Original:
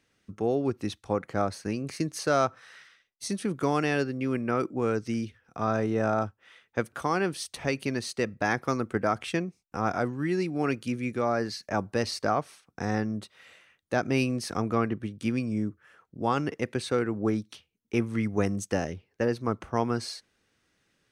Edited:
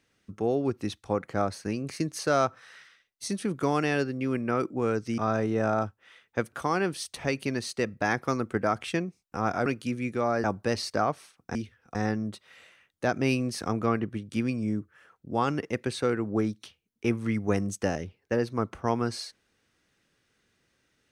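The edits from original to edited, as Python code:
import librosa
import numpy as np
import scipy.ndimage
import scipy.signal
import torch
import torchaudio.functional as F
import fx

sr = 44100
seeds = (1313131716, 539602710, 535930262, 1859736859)

y = fx.edit(x, sr, fx.move(start_s=5.18, length_s=0.4, to_s=12.84),
    fx.cut(start_s=10.06, length_s=0.61),
    fx.cut(start_s=11.45, length_s=0.28), tone=tone)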